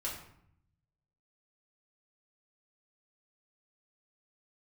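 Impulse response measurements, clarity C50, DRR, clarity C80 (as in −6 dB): 5.0 dB, −5.0 dB, 8.0 dB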